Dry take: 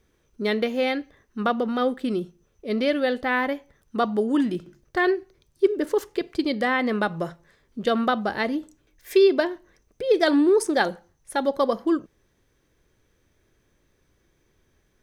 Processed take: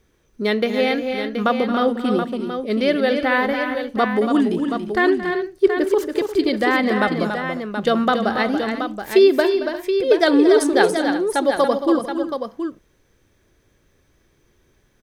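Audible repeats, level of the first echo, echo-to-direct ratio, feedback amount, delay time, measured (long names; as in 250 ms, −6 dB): 4, −14.5 dB, −3.5 dB, repeats not evenly spaced, 224 ms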